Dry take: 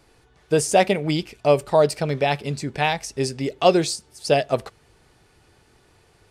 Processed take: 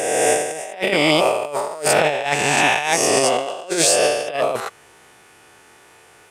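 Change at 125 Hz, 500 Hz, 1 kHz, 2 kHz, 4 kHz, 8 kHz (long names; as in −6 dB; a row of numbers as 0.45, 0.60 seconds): −5.5, +1.5, +3.5, +9.0, +7.0, +11.5 decibels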